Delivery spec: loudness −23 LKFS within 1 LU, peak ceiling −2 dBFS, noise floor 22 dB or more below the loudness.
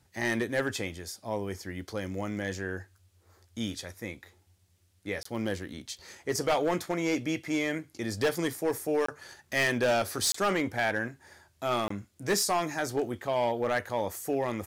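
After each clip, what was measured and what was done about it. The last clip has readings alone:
share of clipped samples 1.0%; peaks flattened at −21.0 dBFS; number of dropouts 4; longest dropout 24 ms; integrated loudness −31.0 LKFS; sample peak −21.0 dBFS; target loudness −23.0 LKFS
→ clipped peaks rebuilt −21 dBFS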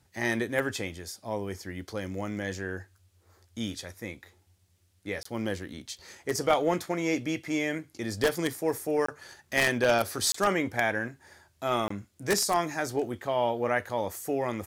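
share of clipped samples 0.0%; number of dropouts 4; longest dropout 24 ms
→ repair the gap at 0:05.23/0:09.06/0:10.32/0:11.88, 24 ms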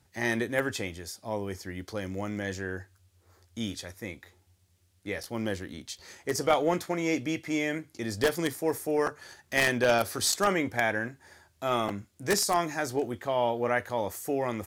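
number of dropouts 0; integrated loudness −30.0 LKFS; sample peak −12.0 dBFS; target loudness −23.0 LKFS
→ level +7 dB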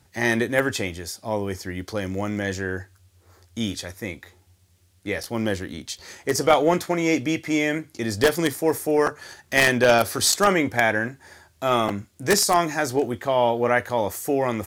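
integrated loudness −23.0 LKFS; sample peak −5.0 dBFS; background noise floor −60 dBFS

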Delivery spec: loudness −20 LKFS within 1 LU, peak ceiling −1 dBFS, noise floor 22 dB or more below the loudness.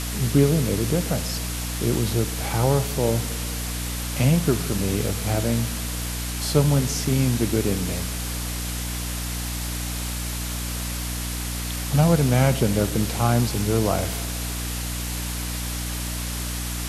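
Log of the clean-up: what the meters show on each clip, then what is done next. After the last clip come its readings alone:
mains hum 60 Hz; hum harmonics up to 300 Hz; level of the hum −28 dBFS; background noise floor −29 dBFS; target noise floor −46 dBFS; integrated loudness −24.0 LKFS; sample peak −4.5 dBFS; target loudness −20.0 LKFS
→ hum removal 60 Hz, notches 5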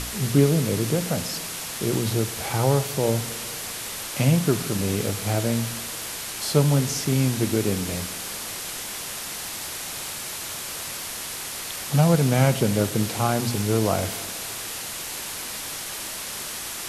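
mains hum none found; background noise floor −33 dBFS; target noise floor −47 dBFS
→ broadband denoise 14 dB, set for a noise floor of −33 dBFS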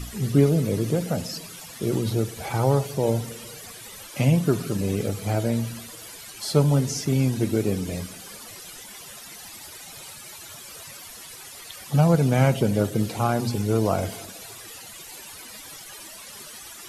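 background noise floor −42 dBFS; target noise floor −46 dBFS
→ broadband denoise 6 dB, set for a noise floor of −42 dBFS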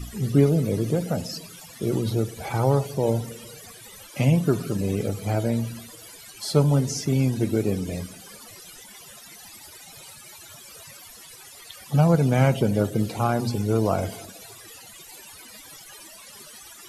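background noise floor −46 dBFS; integrated loudness −24.0 LKFS; sample peak −6.0 dBFS; target loudness −20.0 LKFS
→ level +4 dB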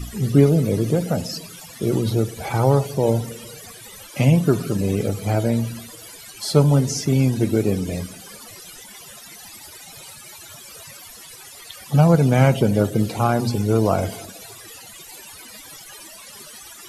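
integrated loudness −20.0 LKFS; sample peak −2.0 dBFS; background noise floor −42 dBFS

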